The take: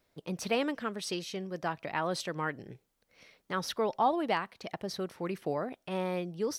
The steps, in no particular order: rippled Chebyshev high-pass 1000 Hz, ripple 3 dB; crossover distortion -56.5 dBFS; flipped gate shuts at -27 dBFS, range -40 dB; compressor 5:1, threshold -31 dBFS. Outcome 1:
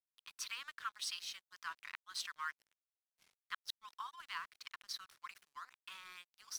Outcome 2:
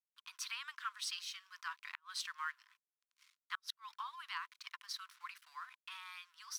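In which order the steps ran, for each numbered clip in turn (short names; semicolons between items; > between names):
compressor > rippled Chebyshev high-pass > flipped gate > crossover distortion; crossover distortion > compressor > rippled Chebyshev high-pass > flipped gate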